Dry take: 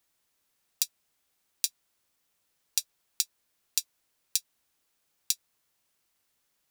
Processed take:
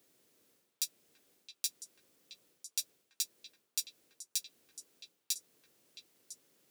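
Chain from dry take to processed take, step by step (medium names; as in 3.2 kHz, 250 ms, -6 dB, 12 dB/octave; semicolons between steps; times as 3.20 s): Bessel high-pass 190 Hz, order 2; resonant low shelf 630 Hz +10.5 dB, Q 1.5; reverse; compression 10:1, threshold -37 dBFS, peak gain reduction 16 dB; reverse; repeats whose band climbs or falls 334 ms, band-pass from 1.1 kHz, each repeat 1.4 oct, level -6 dB; trim +4.5 dB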